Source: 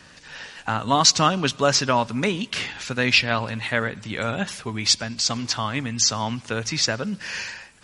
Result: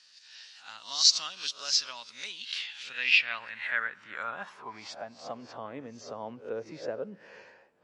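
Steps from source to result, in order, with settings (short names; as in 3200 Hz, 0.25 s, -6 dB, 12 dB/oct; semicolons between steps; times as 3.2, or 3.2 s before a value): spectral swells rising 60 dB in 0.33 s; band-pass sweep 4600 Hz -> 490 Hz, 2.25–5.61; gain -4 dB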